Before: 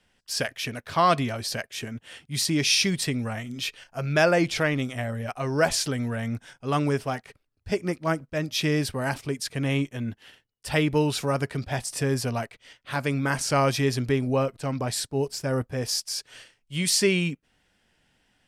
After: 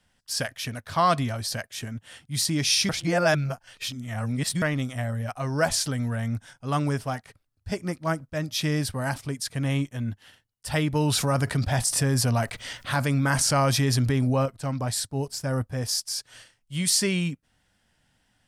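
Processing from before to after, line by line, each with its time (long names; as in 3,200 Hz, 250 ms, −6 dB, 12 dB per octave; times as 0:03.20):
0:02.89–0:04.62: reverse
0:10.95–0:14.46: envelope flattener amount 50%
whole clip: graphic EQ with 15 bands 100 Hz +5 dB, 400 Hz −7 dB, 2,500 Hz −5 dB, 10,000 Hz +3 dB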